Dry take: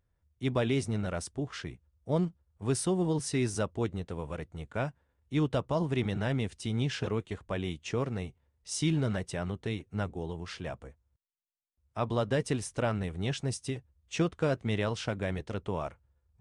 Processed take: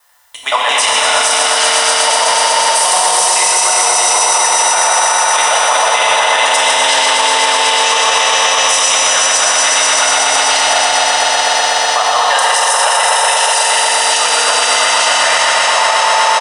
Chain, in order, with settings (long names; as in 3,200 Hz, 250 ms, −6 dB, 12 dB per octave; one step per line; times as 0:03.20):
reversed piece by piece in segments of 86 ms
inverse Chebyshev high-pass filter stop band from 350 Hz, stop band 40 dB
high-shelf EQ 5,100 Hz +8 dB
notch filter 2,200 Hz, Q 15
comb filter 1 ms, depth 32%
reversed playback
downward compressor 6 to 1, threshold −43 dBFS, peak gain reduction 16.5 dB
reversed playback
on a send: echo that builds up and dies away 123 ms, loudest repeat 5, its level −5.5 dB
on the sum: feedback delay network reverb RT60 3.6 s, high-frequency decay 0.9×, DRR −5 dB
boost into a limiter +32 dB
level −1 dB